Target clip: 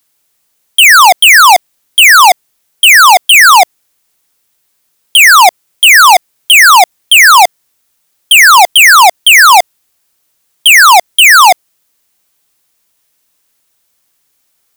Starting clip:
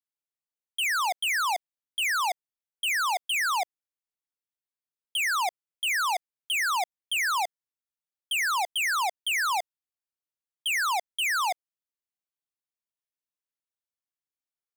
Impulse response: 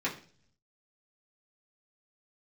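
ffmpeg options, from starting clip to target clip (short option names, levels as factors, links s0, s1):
-af "highshelf=f=5900:g=6,apsyclip=39.8,volume=0.841"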